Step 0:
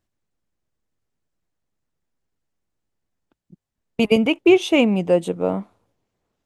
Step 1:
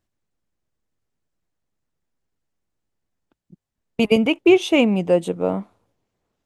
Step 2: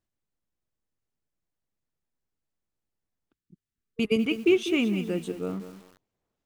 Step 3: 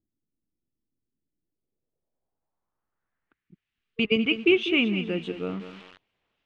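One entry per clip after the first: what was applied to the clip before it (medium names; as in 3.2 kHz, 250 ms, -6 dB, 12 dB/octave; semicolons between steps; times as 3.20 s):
no audible change
time-frequency box 3.32–5.85 s, 460–1100 Hz -12 dB; bit-crushed delay 197 ms, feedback 35%, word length 6-bit, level -11 dB; trim -7.5 dB
low-pass sweep 290 Hz -> 2.9 kHz, 1.36–3.77 s; tape noise reduction on one side only encoder only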